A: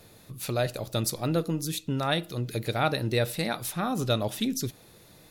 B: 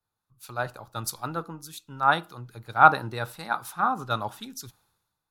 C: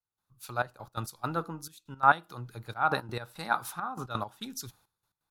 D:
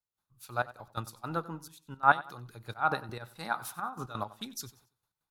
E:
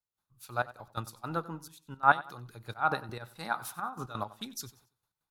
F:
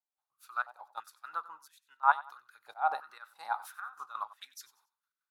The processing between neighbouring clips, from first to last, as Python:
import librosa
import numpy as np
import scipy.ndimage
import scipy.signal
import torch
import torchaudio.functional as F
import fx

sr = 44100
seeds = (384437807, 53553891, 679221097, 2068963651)

y1 = fx.band_shelf(x, sr, hz=1100.0, db=15.0, octaves=1.2)
y1 = fx.band_widen(y1, sr, depth_pct=100)
y1 = F.gain(torch.from_numpy(y1), -7.5).numpy()
y2 = fx.step_gate(y1, sr, bpm=170, pattern='..xxxxx..x.x', floor_db=-12.0, edge_ms=4.5)
y3 = y2 * (1.0 - 0.55 / 2.0 + 0.55 / 2.0 * np.cos(2.0 * np.pi * 5.2 * (np.arange(len(y2)) / sr)))
y3 = fx.echo_feedback(y3, sr, ms=93, feedback_pct=31, wet_db=-18)
y4 = y3
y5 = fx.filter_held_highpass(y4, sr, hz=3.0, low_hz=750.0, high_hz=1800.0)
y5 = F.gain(torch.from_numpy(y5), -9.0).numpy()